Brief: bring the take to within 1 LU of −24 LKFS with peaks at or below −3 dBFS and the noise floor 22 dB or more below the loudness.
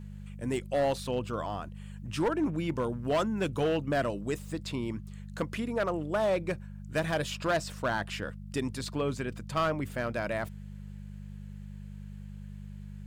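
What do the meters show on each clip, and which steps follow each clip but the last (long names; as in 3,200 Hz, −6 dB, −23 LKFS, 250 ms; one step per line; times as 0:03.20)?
share of clipped samples 1.3%; peaks flattened at −22.5 dBFS; mains hum 50 Hz; hum harmonics up to 200 Hz; level of the hum −41 dBFS; integrated loudness −32.0 LKFS; sample peak −22.5 dBFS; target loudness −24.0 LKFS
→ clipped peaks rebuilt −22.5 dBFS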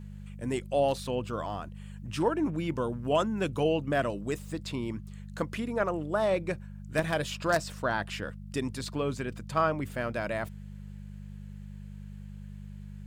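share of clipped samples 0.0%; mains hum 50 Hz; hum harmonics up to 200 Hz; level of the hum −40 dBFS
→ hum removal 50 Hz, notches 4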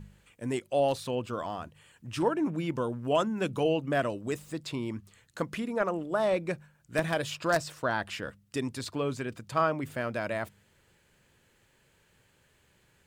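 mains hum none found; integrated loudness −31.5 LKFS; sample peak −13.5 dBFS; target loudness −24.0 LKFS
→ level +7.5 dB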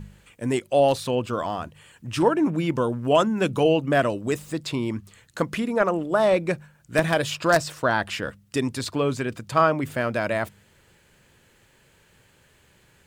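integrated loudness −24.0 LKFS; sample peak −6.0 dBFS; background noise floor −60 dBFS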